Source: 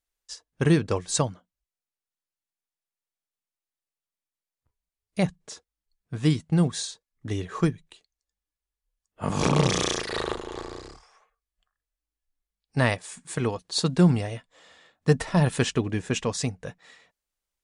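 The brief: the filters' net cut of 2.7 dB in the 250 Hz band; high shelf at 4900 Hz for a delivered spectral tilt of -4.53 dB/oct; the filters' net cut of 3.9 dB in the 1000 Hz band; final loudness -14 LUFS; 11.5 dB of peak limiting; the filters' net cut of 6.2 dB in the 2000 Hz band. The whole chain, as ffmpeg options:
-af "equalizer=f=250:t=o:g=-4.5,equalizer=f=1k:t=o:g=-3,equalizer=f=2k:t=o:g=-7.5,highshelf=f=4.9k:g=4,volume=19dB,alimiter=limit=-1.5dB:level=0:latency=1"

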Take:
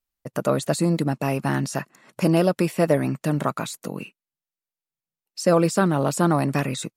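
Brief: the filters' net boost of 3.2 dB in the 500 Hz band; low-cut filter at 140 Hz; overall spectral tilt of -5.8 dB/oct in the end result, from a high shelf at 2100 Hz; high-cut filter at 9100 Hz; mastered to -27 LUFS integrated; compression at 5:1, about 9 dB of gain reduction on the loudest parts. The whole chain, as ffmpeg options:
-af "highpass=140,lowpass=9.1k,equalizer=f=500:t=o:g=4.5,highshelf=f=2.1k:g=-7.5,acompressor=threshold=-21dB:ratio=5,volume=1dB"

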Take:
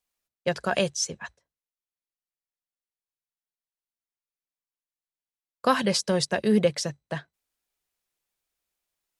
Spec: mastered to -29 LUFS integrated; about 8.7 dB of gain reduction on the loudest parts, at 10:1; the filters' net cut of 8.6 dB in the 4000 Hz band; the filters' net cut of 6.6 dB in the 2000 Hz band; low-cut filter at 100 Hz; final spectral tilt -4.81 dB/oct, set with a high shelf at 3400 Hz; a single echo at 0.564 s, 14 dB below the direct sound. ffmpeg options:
-af "highpass=100,equalizer=f=2k:t=o:g=-6,highshelf=f=3.4k:g=-7.5,equalizer=f=4k:t=o:g=-4,acompressor=threshold=-25dB:ratio=10,aecho=1:1:564:0.2,volume=4.5dB"

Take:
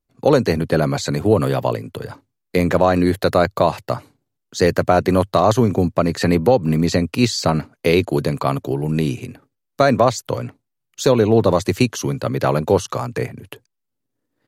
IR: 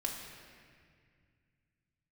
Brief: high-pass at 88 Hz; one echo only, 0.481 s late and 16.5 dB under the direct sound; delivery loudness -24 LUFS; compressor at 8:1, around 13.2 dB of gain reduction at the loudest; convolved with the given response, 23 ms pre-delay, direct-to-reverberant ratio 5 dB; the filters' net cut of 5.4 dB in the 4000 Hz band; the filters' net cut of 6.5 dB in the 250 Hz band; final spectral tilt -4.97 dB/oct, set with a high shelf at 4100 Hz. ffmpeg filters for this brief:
-filter_complex "[0:a]highpass=88,equalizer=f=250:t=o:g=-9,equalizer=f=4k:t=o:g=-9,highshelf=f=4.1k:g=4.5,acompressor=threshold=-25dB:ratio=8,aecho=1:1:481:0.15,asplit=2[a][b];[1:a]atrim=start_sample=2205,adelay=23[c];[b][c]afir=irnorm=-1:irlink=0,volume=-7dB[d];[a][d]amix=inputs=2:normalize=0,volume=5.5dB"

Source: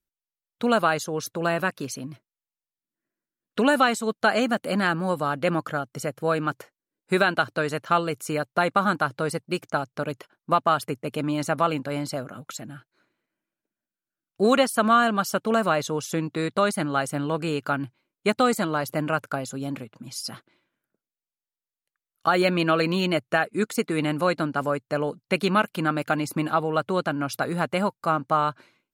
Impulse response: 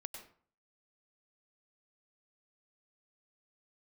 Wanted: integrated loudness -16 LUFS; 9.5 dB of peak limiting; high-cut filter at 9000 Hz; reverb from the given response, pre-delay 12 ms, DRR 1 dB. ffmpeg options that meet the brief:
-filter_complex "[0:a]lowpass=9k,alimiter=limit=-17.5dB:level=0:latency=1,asplit=2[a][b];[1:a]atrim=start_sample=2205,adelay=12[c];[b][c]afir=irnorm=-1:irlink=0,volume=2dB[d];[a][d]amix=inputs=2:normalize=0,volume=11dB"

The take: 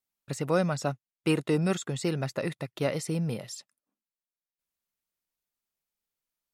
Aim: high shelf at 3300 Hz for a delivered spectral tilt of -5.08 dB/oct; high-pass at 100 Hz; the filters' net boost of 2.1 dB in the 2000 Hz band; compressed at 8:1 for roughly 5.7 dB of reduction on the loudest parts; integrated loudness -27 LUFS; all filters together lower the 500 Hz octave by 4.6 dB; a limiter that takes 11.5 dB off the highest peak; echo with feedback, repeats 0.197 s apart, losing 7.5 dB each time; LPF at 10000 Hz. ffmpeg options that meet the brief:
-af "highpass=100,lowpass=10k,equalizer=f=500:t=o:g=-5.5,equalizer=f=2k:t=o:g=4.5,highshelf=f=3.3k:g=-4,acompressor=threshold=-28dB:ratio=8,alimiter=level_in=5dB:limit=-24dB:level=0:latency=1,volume=-5dB,aecho=1:1:197|394|591|788|985:0.422|0.177|0.0744|0.0312|0.0131,volume=12dB"

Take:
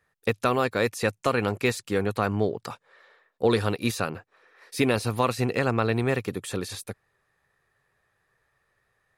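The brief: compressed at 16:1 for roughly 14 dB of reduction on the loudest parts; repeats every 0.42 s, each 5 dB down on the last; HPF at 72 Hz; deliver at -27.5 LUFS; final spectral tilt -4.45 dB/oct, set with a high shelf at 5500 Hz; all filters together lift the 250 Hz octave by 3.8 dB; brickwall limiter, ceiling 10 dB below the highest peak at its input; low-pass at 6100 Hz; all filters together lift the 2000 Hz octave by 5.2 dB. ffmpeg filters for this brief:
-af "highpass=72,lowpass=6.1k,equalizer=f=250:t=o:g=4.5,equalizer=f=2k:t=o:g=7,highshelf=f=5.5k:g=-3,acompressor=threshold=-29dB:ratio=16,alimiter=limit=-22dB:level=0:latency=1,aecho=1:1:420|840|1260|1680|2100|2520|2940:0.562|0.315|0.176|0.0988|0.0553|0.031|0.0173,volume=9dB"

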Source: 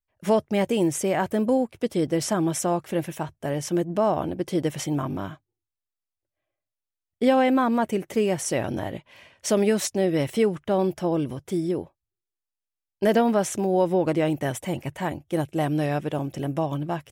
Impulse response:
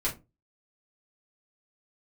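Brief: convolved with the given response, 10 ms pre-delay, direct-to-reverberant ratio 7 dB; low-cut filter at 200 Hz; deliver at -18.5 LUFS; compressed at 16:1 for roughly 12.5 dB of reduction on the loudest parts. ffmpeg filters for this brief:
-filter_complex "[0:a]highpass=200,acompressor=threshold=-28dB:ratio=16,asplit=2[a][b];[1:a]atrim=start_sample=2205,adelay=10[c];[b][c]afir=irnorm=-1:irlink=0,volume=-14dB[d];[a][d]amix=inputs=2:normalize=0,volume=14.5dB"

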